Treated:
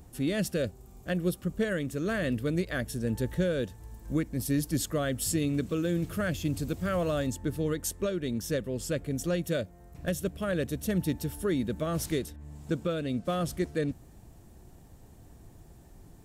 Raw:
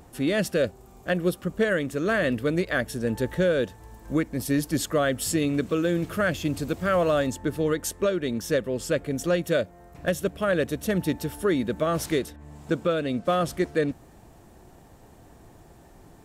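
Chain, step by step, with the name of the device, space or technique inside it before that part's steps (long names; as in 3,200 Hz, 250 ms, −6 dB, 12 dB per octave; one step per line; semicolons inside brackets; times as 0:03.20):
smiley-face EQ (low-shelf EQ 190 Hz +7.5 dB; parametric band 1,000 Hz −4.5 dB 2.9 octaves; high-shelf EQ 5,500 Hz +4.5 dB)
level −5 dB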